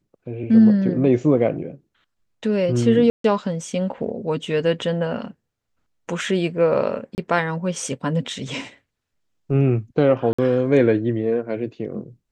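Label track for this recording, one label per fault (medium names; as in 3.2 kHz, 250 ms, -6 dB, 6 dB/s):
3.100000	3.240000	dropout 143 ms
7.150000	7.180000	dropout 29 ms
10.330000	10.380000	dropout 55 ms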